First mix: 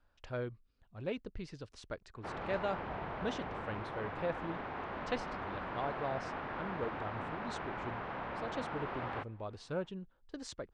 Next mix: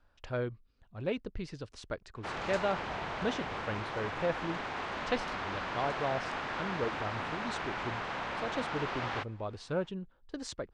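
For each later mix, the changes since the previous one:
speech +4.5 dB
background: remove head-to-tape spacing loss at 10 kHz 38 dB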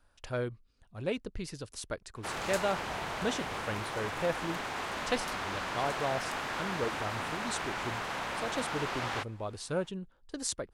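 master: remove high-frequency loss of the air 140 metres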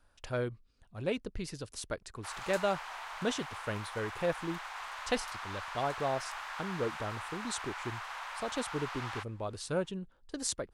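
background: add four-pole ladder high-pass 740 Hz, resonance 30%

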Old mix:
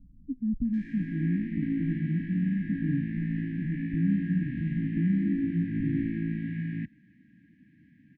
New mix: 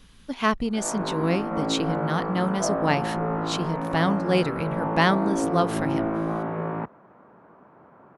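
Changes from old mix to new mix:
speech: remove Chebyshev low-pass filter 810 Hz, order 5
master: remove linear-phase brick-wall band-stop 320–1,600 Hz

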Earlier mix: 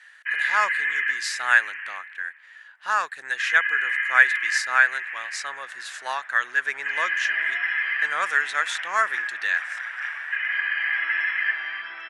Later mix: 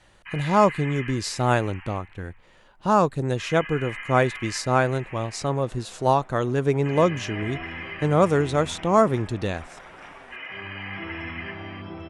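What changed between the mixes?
second sound −4.5 dB
master: remove high-pass with resonance 1,700 Hz, resonance Q 7.5

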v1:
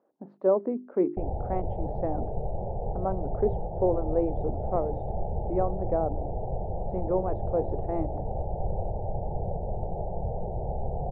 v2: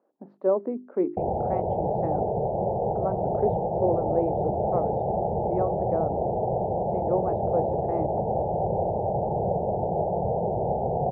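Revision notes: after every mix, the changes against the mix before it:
background +10.0 dB
master: add high-pass filter 160 Hz 12 dB per octave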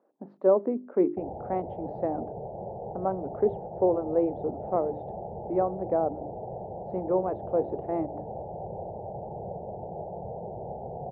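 speech: send +11.5 dB
background −11.5 dB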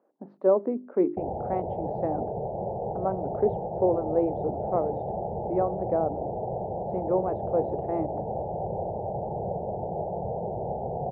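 background +6.0 dB

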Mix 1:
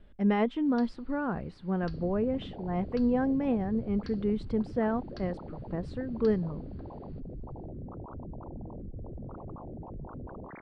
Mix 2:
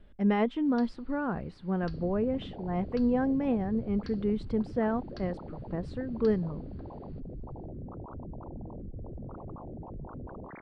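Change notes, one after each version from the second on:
nothing changed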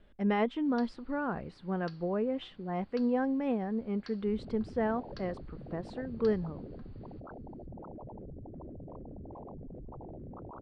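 second sound: entry +2.45 s
master: add low-shelf EQ 260 Hz −6.5 dB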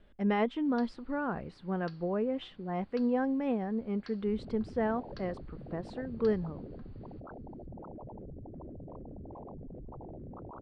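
first sound: add high-frequency loss of the air 54 metres

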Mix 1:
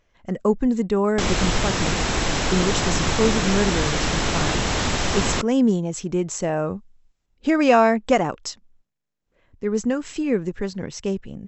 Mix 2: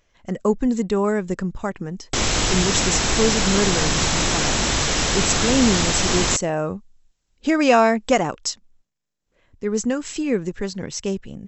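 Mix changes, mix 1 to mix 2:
background: entry +0.95 s
master: add high-shelf EQ 4,300 Hz +9.5 dB

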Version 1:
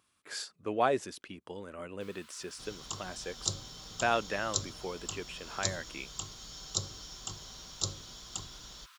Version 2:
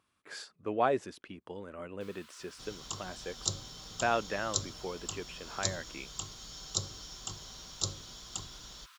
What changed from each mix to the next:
speech: add high-shelf EQ 3,900 Hz −10 dB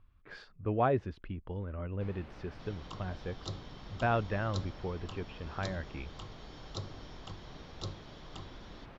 speech: remove high-pass filter 260 Hz 12 dB per octave
first sound: remove Chebyshev high-pass with heavy ripple 970 Hz, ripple 6 dB
master: add high-frequency loss of the air 290 metres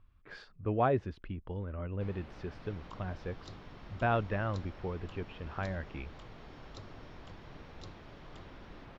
second sound −10.0 dB

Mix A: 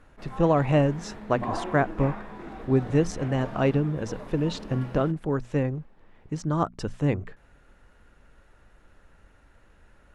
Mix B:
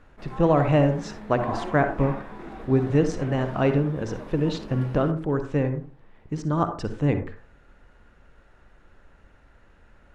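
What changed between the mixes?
speech: add high-frequency loss of the air 56 metres
reverb: on, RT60 0.35 s

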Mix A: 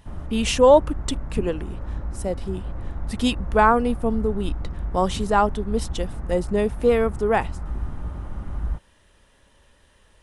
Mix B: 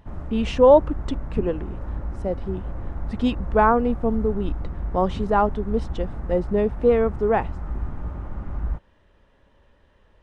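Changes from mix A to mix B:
speech: add head-to-tape spacing loss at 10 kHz 26 dB
master: add parametric band 510 Hz +2 dB 2.2 octaves

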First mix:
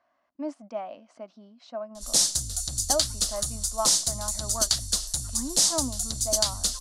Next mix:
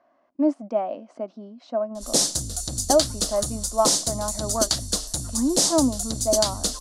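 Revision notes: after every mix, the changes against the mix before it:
master: add parametric band 360 Hz +14 dB 2.5 octaves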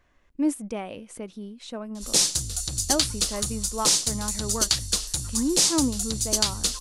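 speech: remove loudspeaker in its box 340–4,600 Hz, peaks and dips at 460 Hz −9 dB, 670 Hz +7 dB, 1,100 Hz +4 dB, 1,800 Hz −4 dB, 3,600 Hz −10 dB
master: add graphic EQ with 15 bands 250 Hz −10 dB, 630 Hz −10 dB, 2,500 Hz +9 dB

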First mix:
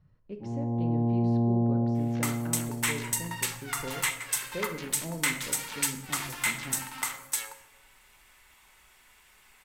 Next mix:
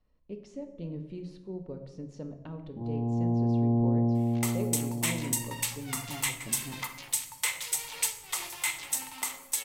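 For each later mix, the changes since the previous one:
first sound: entry +2.35 s
second sound: entry +2.20 s
master: add parametric band 1,500 Hz −10.5 dB 0.71 octaves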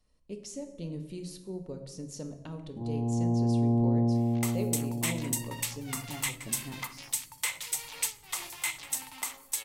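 speech: remove Bessel low-pass filter 2,100 Hz, order 2
second sound: send −11.5 dB

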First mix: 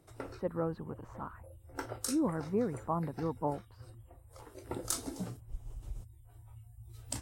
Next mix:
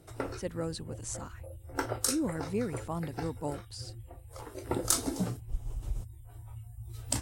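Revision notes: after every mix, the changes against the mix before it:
speech: remove low-pass with resonance 1,100 Hz, resonance Q 2
background +7.5 dB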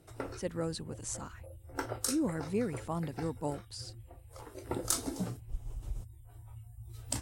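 background −4.0 dB

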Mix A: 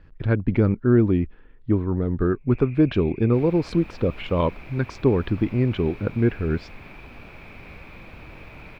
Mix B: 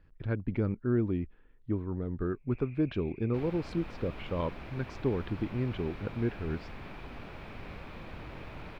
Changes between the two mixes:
speech −11.0 dB
first sound −9.0 dB
second sound: add high-shelf EQ 9,500 Hz −8.5 dB

